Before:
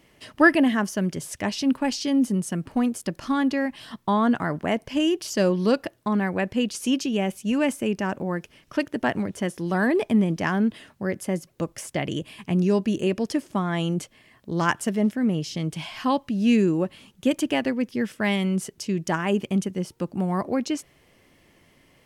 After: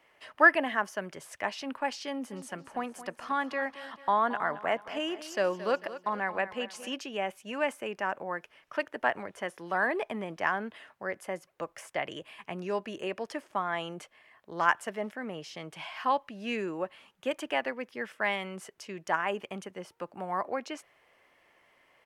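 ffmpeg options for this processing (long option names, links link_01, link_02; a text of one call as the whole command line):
ffmpeg -i in.wav -filter_complex "[0:a]asplit=3[link_01][link_02][link_03];[link_01]afade=type=out:start_time=2.31:duration=0.02[link_04];[link_02]aecho=1:1:222|444|666|888:0.2|0.0858|0.0369|0.0159,afade=type=in:start_time=2.31:duration=0.02,afade=type=out:start_time=6.93:duration=0.02[link_05];[link_03]afade=type=in:start_time=6.93:duration=0.02[link_06];[link_04][link_05][link_06]amix=inputs=3:normalize=0,acrossover=split=540 2500:gain=0.0891 1 0.224[link_07][link_08][link_09];[link_07][link_08][link_09]amix=inputs=3:normalize=0" out.wav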